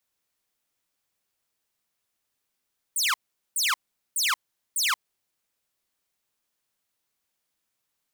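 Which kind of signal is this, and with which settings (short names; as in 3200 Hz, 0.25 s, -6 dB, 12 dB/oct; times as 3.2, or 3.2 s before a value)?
burst of laser zaps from 10000 Hz, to 960 Hz, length 0.18 s saw, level -18.5 dB, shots 4, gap 0.42 s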